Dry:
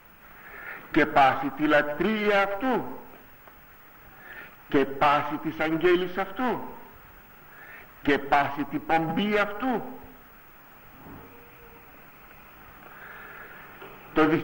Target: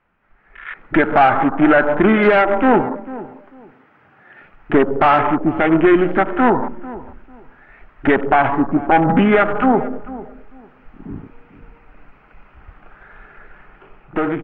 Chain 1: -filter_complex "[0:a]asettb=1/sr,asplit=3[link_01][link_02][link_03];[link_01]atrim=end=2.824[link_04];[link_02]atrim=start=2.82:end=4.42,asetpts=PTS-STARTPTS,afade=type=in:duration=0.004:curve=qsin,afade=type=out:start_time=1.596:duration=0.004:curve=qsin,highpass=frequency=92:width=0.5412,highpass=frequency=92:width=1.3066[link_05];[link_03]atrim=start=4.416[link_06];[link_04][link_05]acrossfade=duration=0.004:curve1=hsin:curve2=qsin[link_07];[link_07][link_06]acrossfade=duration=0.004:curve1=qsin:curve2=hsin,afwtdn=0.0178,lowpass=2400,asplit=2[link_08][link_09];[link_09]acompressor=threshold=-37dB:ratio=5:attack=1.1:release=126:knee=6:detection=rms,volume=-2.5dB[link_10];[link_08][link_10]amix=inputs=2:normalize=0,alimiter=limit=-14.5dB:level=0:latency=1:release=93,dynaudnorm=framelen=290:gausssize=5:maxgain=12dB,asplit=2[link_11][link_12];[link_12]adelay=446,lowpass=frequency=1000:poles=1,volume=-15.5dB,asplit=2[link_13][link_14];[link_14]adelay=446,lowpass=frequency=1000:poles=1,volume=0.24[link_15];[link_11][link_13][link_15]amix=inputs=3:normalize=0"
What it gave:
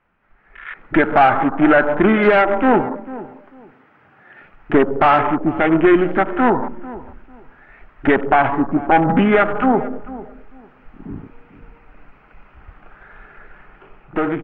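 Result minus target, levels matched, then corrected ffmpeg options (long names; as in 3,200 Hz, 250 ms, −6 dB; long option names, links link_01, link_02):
downward compressor: peak gain reduction +6 dB
-filter_complex "[0:a]asettb=1/sr,asplit=3[link_01][link_02][link_03];[link_01]atrim=end=2.824[link_04];[link_02]atrim=start=2.82:end=4.42,asetpts=PTS-STARTPTS,afade=type=in:duration=0.004:curve=qsin,afade=type=out:start_time=1.596:duration=0.004:curve=qsin,highpass=frequency=92:width=0.5412,highpass=frequency=92:width=1.3066[link_05];[link_03]atrim=start=4.416[link_06];[link_04][link_05]acrossfade=duration=0.004:curve1=hsin:curve2=qsin[link_07];[link_07][link_06]acrossfade=duration=0.004:curve1=qsin:curve2=hsin,afwtdn=0.0178,lowpass=2400,asplit=2[link_08][link_09];[link_09]acompressor=threshold=-29.5dB:ratio=5:attack=1.1:release=126:knee=6:detection=rms,volume=-2.5dB[link_10];[link_08][link_10]amix=inputs=2:normalize=0,alimiter=limit=-14.5dB:level=0:latency=1:release=93,dynaudnorm=framelen=290:gausssize=5:maxgain=12dB,asplit=2[link_11][link_12];[link_12]adelay=446,lowpass=frequency=1000:poles=1,volume=-15.5dB,asplit=2[link_13][link_14];[link_14]adelay=446,lowpass=frequency=1000:poles=1,volume=0.24[link_15];[link_11][link_13][link_15]amix=inputs=3:normalize=0"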